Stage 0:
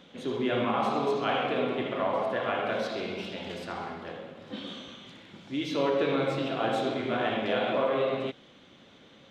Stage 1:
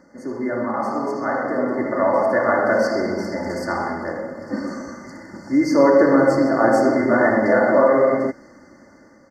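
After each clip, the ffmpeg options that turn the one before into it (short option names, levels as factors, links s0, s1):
-af "afftfilt=real='re*(1-between(b*sr/4096,2100,4400))':imag='im*(1-between(b*sr/4096,2100,4400))':win_size=4096:overlap=0.75,aecho=1:1:3.4:0.49,dynaudnorm=f=830:g=5:m=3.35,volume=1.33"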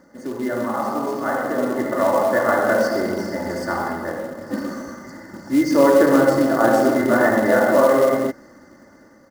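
-af "acrusher=bits=5:mode=log:mix=0:aa=0.000001"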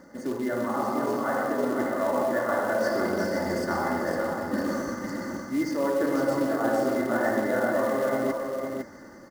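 -af "areverse,acompressor=threshold=0.0447:ratio=4,areverse,aecho=1:1:505:0.531,volume=1.19"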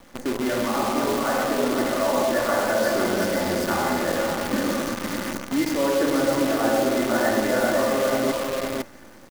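-af "acrusher=bits=6:dc=4:mix=0:aa=0.000001,volume=1.5"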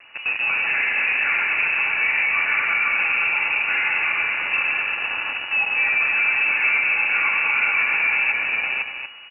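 -af "aresample=8000,asoftclip=type=tanh:threshold=0.141,aresample=44100,aecho=1:1:239:0.447,lowpass=f=2500:t=q:w=0.5098,lowpass=f=2500:t=q:w=0.6013,lowpass=f=2500:t=q:w=0.9,lowpass=f=2500:t=q:w=2.563,afreqshift=-2900,volume=1.41"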